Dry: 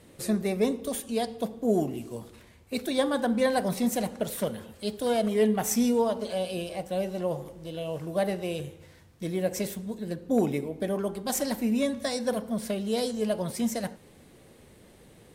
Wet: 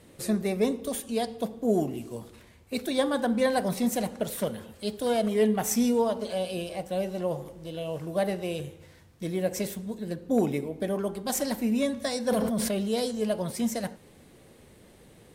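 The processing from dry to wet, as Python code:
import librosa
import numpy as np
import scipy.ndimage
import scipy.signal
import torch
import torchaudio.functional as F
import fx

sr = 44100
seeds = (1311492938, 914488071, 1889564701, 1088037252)

y = fx.sustainer(x, sr, db_per_s=20.0, at=(12.28, 12.95))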